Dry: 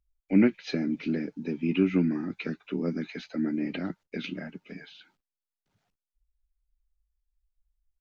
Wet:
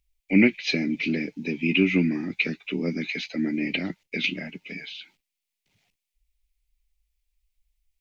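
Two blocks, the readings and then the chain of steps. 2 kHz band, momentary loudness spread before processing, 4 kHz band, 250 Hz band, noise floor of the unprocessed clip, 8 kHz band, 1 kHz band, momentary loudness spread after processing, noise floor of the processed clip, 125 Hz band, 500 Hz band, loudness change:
+12.5 dB, 14 LU, +12.0 dB, +2.5 dB, under -85 dBFS, n/a, -0.5 dB, 16 LU, -85 dBFS, +2.5 dB, +2.0 dB, +4.0 dB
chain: resonant high shelf 1800 Hz +7 dB, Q 3; gain +2.5 dB

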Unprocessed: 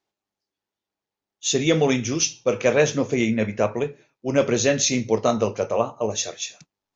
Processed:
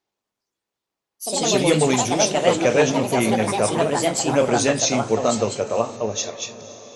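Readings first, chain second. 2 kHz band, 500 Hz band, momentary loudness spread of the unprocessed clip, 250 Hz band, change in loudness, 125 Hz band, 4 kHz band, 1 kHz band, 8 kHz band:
+2.0 dB, +2.0 dB, 9 LU, +1.5 dB, +2.5 dB, +1.5 dB, +3.0 dB, +7.0 dB, n/a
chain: diffused feedback echo 0.528 s, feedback 53%, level -16 dB; echoes that change speed 0.118 s, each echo +3 st, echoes 3

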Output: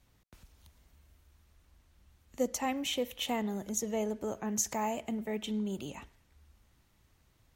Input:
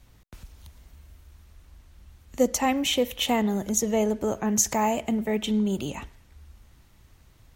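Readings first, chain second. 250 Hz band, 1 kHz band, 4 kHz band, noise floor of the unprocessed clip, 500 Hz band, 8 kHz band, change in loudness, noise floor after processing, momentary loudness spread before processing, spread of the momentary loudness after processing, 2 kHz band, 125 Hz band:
-10.0 dB, -9.0 dB, -9.0 dB, -57 dBFS, -9.0 dB, -9.0 dB, -9.5 dB, -69 dBFS, 5 LU, 6 LU, -9.0 dB, -10.0 dB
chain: low shelf 83 Hz -6.5 dB; gain -9 dB

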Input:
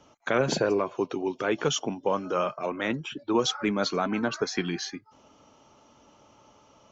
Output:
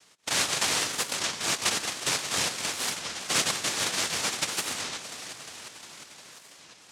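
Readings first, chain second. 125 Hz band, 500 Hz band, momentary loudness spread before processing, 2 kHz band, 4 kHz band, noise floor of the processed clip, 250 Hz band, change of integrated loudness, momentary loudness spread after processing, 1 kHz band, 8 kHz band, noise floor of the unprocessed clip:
-7.5 dB, -12.0 dB, 5 LU, +3.0 dB, +6.5 dB, -54 dBFS, -12.5 dB, +1.0 dB, 17 LU, -3.0 dB, n/a, -59 dBFS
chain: spectral whitening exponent 0.6; HPF 410 Hz 6 dB/oct; echo with dull and thin repeats by turns 0.177 s, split 930 Hz, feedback 84%, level -9.5 dB; noise vocoder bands 1; record warp 33 1/3 rpm, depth 250 cents

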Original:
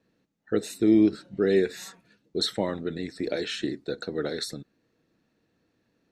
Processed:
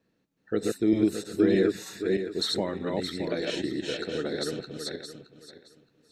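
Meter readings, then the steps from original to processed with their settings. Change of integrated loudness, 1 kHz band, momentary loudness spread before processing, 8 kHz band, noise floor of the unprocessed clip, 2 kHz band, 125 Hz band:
-1.5 dB, +0.5 dB, 14 LU, +0.5 dB, -73 dBFS, +0.5 dB, +0.5 dB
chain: regenerating reverse delay 0.31 s, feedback 45%, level -1 dB; gain -2.5 dB

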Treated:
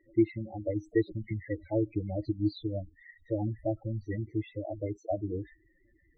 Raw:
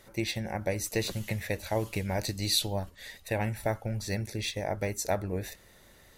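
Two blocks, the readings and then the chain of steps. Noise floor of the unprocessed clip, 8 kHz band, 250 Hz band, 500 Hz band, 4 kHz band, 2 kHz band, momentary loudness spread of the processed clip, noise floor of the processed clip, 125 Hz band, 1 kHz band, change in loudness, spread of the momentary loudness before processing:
-57 dBFS, under -30 dB, +5.0 dB, -0.5 dB, -21.0 dB, -11.0 dB, 7 LU, -67 dBFS, -1.0 dB, -8.5 dB, -1.5 dB, 9 LU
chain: thirty-one-band EQ 200 Hz -3 dB, 315 Hz +11 dB, 2000 Hz +7 dB; loudest bins only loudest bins 8; tape spacing loss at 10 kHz 29 dB; upward expander 1.5:1, over -39 dBFS; gain +4 dB

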